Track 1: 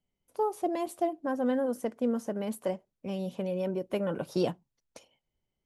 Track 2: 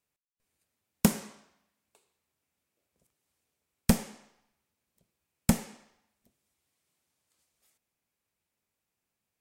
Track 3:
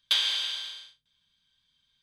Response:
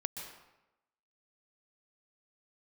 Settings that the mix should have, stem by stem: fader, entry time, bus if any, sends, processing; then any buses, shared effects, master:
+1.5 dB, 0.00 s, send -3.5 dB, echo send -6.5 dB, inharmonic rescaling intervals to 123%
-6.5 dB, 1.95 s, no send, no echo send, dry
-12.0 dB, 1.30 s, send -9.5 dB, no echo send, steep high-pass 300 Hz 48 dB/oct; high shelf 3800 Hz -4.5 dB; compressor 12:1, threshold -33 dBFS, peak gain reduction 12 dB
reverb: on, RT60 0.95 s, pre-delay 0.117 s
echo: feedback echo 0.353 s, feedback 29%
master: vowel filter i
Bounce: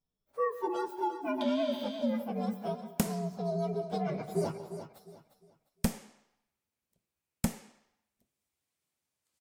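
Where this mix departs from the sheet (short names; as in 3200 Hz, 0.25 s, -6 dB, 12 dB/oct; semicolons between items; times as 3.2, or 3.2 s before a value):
stem 1 +1.5 dB -> -4.5 dB; master: missing vowel filter i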